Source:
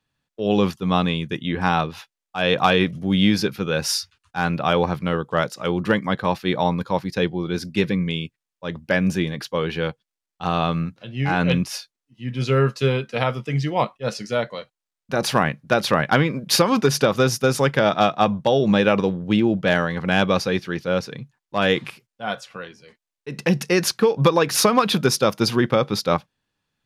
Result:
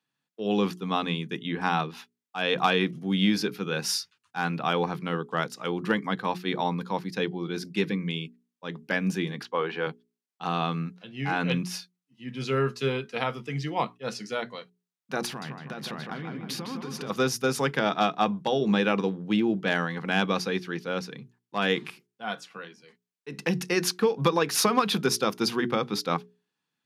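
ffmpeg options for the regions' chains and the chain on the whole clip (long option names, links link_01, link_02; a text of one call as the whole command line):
ffmpeg -i in.wav -filter_complex "[0:a]asettb=1/sr,asplit=3[link_01][link_02][link_03];[link_01]atrim=end=9.434[link_04];[link_02]atrim=start=9.43:end=9.87,asetpts=PTS-STARTPTS,afade=type=in:duration=0.004:curve=qsin,afade=type=out:start_time=0.436:duration=0.004:curve=qsin,bandpass=frequency=910:width_type=q:width=0.77,acontrast=48[link_05];[link_03]atrim=start=9.866[link_06];[link_04][link_05]acrossfade=duration=0.004:curve1=hsin:curve2=qsin[link_07];[link_07][link_06]acrossfade=duration=0.004:curve1=qsin:curve2=hsin,asettb=1/sr,asplit=3[link_08][link_09][link_10];[link_08]atrim=end=15.264[link_11];[link_09]atrim=start=15.26:end=17.1,asetpts=PTS-STARTPTS,afade=type=in:duration=0.004:curve=qsin,afade=type=out:start_time=1.836:duration=0.004:curve=qsin,bass=frequency=250:gain=6,treble=frequency=4000:gain=-3,acompressor=threshold=-26dB:ratio=10:attack=3.2:release=140:knee=1:detection=peak,asplit=2[link_12][link_13];[link_13]adelay=158,lowpass=frequency=2900:poles=1,volume=-4dB,asplit=2[link_14][link_15];[link_15]adelay=158,lowpass=frequency=2900:poles=1,volume=0.5,asplit=2[link_16][link_17];[link_17]adelay=158,lowpass=frequency=2900:poles=1,volume=0.5,asplit=2[link_18][link_19];[link_19]adelay=158,lowpass=frequency=2900:poles=1,volume=0.5,asplit=2[link_20][link_21];[link_21]adelay=158,lowpass=frequency=2900:poles=1,volume=0.5,asplit=2[link_22][link_23];[link_23]adelay=158,lowpass=frequency=2900:poles=1,volume=0.5[link_24];[link_12][link_14][link_16][link_18][link_20][link_22][link_24]amix=inputs=7:normalize=0,atrim=end_sample=81144[link_25];[link_10]atrim=start=17.096[link_26];[link_11][link_25]acrossfade=duration=0.004:curve1=hsin:curve2=qsin[link_27];[link_27][link_26]acrossfade=duration=0.004:curve1=qsin:curve2=hsin,highpass=frequency=150:width=0.5412,highpass=frequency=150:width=1.3066,equalizer=frequency=580:width=7.1:gain=-10.5,bandreject=frequency=60:width_type=h:width=6,bandreject=frequency=120:width_type=h:width=6,bandreject=frequency=180:width_type=h:width=6,bandreject=frequency=240:width_type=h:width=6,bandreject=frequency=300:width_type=h:width=6,bandreject=frequency=360:width_type=h:width=6,bandreject=frequency=420:width_type=h:width=6,volume=-5dB" out.wav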